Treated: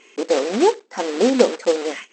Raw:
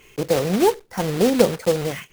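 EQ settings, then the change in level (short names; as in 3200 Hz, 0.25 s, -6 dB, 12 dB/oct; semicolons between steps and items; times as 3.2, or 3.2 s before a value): brick-wall FIR band-pass 210–8200 Hz; +1.5 dB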